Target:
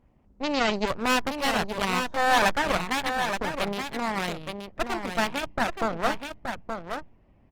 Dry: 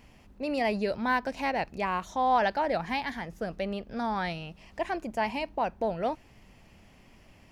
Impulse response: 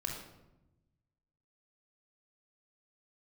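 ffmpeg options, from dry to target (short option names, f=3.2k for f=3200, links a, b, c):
-filter_complex "[0:a]aeval=exprs='0.178*(cos(1*acos(clip(val(0)/0.178,-1,1)))-cos(1*PI/2))+0.0794*(cos(4*acos(clip(val(0)/0.178,-1,1)))-cos(4*PI/2))+0.0126*(cos(7*acos(clip(val(0)/0.178,-1,1)))-cos(7*PI/2))':c=same,asplit=2[a][b];[b]asoftclip=type=hard:threshold=-25dB,volume=-11dB[c];[a][c]amix=inputs=2:normalize=0,highshelf=f=3.5k:g=6.5,adynamicsmooth=sensitivity=4.5:basefreq=1.1k,asplit=2[d][e];[e]aecho=0:1:874:0.473[f];[d][f]amix=inputs=2:normalize=0" -ar 48000 -c:a libopus -b:a 20k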